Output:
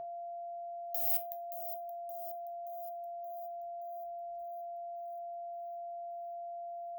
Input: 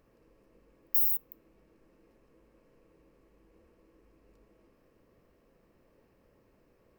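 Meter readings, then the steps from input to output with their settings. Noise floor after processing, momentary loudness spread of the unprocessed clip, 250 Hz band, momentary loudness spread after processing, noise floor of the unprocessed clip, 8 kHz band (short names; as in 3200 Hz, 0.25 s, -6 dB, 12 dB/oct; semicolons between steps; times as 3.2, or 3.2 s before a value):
-43 dBFS, 6 LU, under -15 dB, 10 LU, -67 dBFS, n/a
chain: spectral noise reduction 12 dB; power-law curve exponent 1.4; negative-ratio compressor -37 dBFS, ratio -1; limiter -20.5 dBFS, peak gain reduction 7 dB; whine 690 Hz -44 dBFS; resonator 130 Hz, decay 0.25 s, harmonics odd, mix 70%; on a send: thin delay 0.574 s, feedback 59%, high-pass 3600 Hz, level -12.5 dB; on the sum: gain +13.5 dB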